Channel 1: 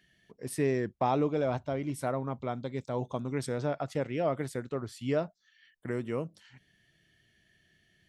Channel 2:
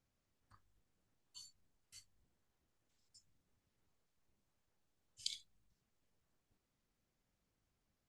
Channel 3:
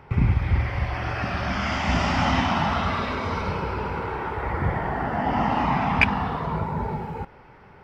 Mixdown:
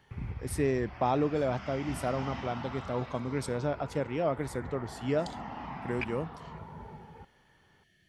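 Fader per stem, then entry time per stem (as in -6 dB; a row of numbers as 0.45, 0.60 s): 0.0, -6.0, -18.0 dB; 0.00, 0.00, 0.00 s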